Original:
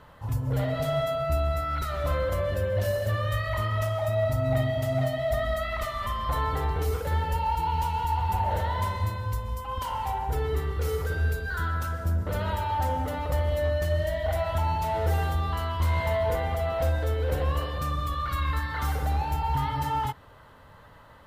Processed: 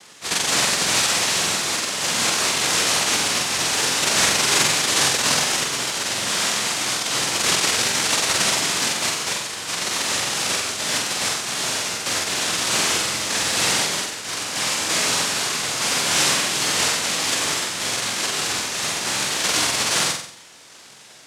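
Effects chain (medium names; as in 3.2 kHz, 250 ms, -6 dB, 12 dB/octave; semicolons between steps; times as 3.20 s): 13.86–14.89 s: static phaser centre 2.1 kHz, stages 6; noise-vocoded speech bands 1; flutter echo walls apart 7.9 m, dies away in 0.59 s; trim +5.5 dB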